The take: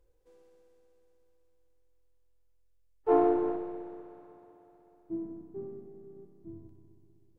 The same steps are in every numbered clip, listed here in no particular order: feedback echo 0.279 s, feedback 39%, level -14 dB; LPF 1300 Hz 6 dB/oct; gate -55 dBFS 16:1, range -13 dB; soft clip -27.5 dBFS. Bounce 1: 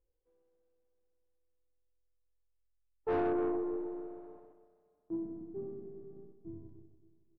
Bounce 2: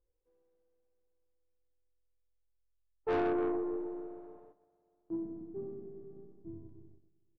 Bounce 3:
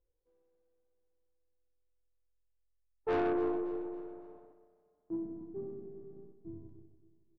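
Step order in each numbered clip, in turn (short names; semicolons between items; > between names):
gate > feedback echo > soft clip > LPF; feedback echo > gate > LPF > soft clip; gate > LPF > soft clip > feedback echo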